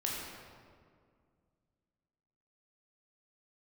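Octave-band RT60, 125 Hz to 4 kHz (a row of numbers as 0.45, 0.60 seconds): 2.8, 2.6, 2.2, 1.9, 1.5, 1.2 seconds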